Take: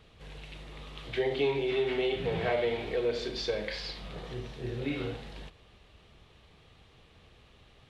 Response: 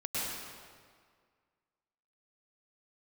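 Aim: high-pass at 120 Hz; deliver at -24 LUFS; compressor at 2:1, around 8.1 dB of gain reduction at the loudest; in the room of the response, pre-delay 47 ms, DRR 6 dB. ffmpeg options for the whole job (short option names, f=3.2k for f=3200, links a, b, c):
-filter_complex "[0:a]highpass=120,acompressor=threshold=-40dB:ratio=2,asplit=2[a][b];[1:a]atrim=start_sample=2205,adelay=47[c];[b][c]afir=irnorm=-1:irlink=0,volume=-12dB[d];[a][d]amix=inputs=2:normalize=0,volume=15dB"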